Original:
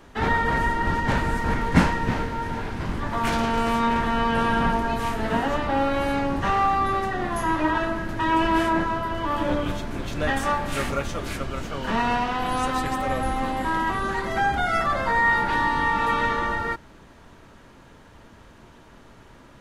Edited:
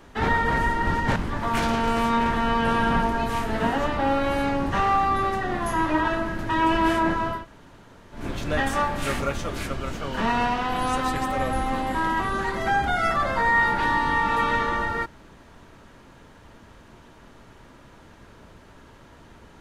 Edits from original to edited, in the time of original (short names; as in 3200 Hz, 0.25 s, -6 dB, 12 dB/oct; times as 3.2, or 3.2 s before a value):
1.16–2.86 cut
9.09–9.88 room tone, crossfade 0.16 s